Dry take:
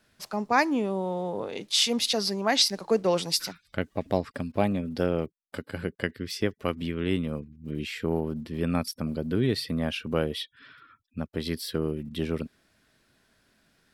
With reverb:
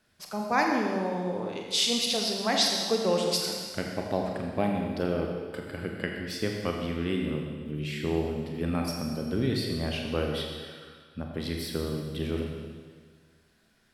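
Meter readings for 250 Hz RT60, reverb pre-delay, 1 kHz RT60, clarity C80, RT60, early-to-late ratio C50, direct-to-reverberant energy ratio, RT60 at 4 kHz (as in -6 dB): 1.7 s, 27 ms, 1.7 s, 3.5 dB, 1.7 s, 2.5 dB, 0.5 dB, 1.7 s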